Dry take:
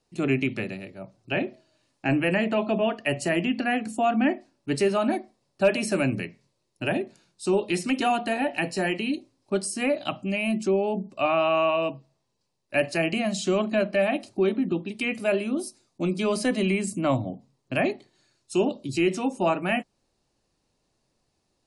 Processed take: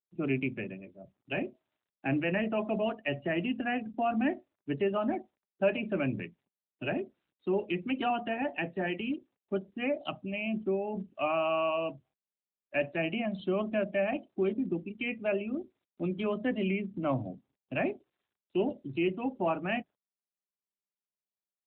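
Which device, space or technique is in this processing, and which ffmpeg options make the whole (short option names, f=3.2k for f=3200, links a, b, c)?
mobile call with aggressive noise cancelling: -af "highpass=f=100:w=0.5412,highpass=f=100:w=1.3066,afftdn=nr=24:nf=-37,volume=-6dB" -ar 8000 -c:a libopencore_amrnb -b:a 12200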